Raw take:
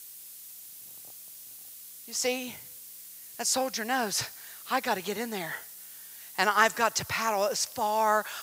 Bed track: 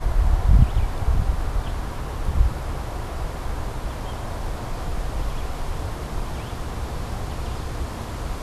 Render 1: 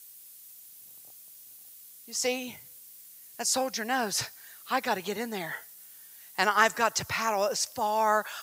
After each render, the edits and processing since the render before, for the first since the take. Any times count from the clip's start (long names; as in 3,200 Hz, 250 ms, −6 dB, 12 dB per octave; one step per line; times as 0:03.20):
broadband denoise 6 dB, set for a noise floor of −47 dBFS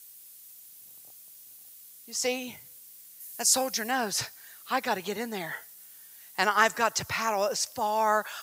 0:03.20–0:03.91: parametric band 12,000 Hz +7.5 dB 1.7 octaves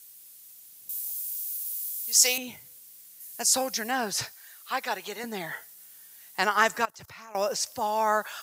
0:00.89–0:02.38: spectral tilt +4.5 dB per octave
0:04.32–0:05.24: high-pass filter 640 Hz 6 dB per octave
0:06.85–0:07.35: output level in coarse steps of 23 dB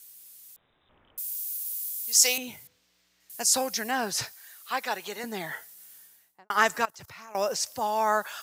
0:00.56–0:01.18: voice inversion scrambler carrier 3,800 Hz
0:02.67–0:03.30: high-frequency loss of the air 190 metres
0:05.93–0:06.50: fade out and dull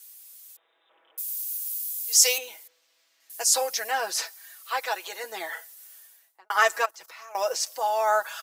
high-pass filter 410 Hz 24 dB per octave
comb filter 6.1 ms, depth 70%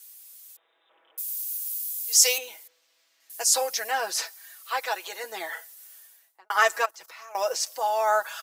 no processing that can be heard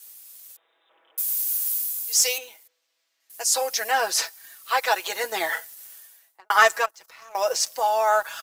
leveller curve on the samples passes 1
speech leveller within 5 dB 0.5 s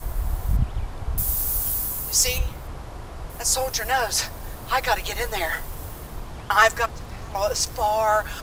mix in bed track −7 dB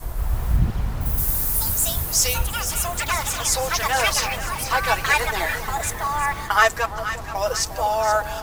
on a send: echo with a time of its own for lows and highs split 950 Hz, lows 352 ms, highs 476 ms, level −10.5 dB
on the sum: delay with pitch and tempo change per echo 174 ms, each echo +5 semitones, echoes 2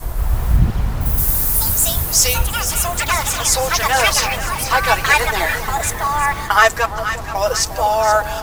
level +5.5 dB
brickwall limiter −1 dBFS, peak gain reduction 1.5 dB